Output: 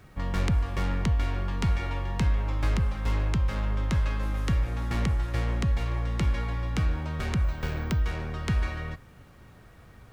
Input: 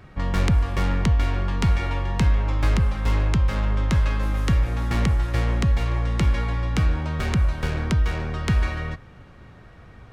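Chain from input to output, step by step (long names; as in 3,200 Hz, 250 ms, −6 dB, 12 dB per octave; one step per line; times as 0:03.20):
background noise pink −60 dBFS
0:07.44–0:08.02: bad sample-rate conversion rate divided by 2×, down filtered, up hold
level −5.5 dB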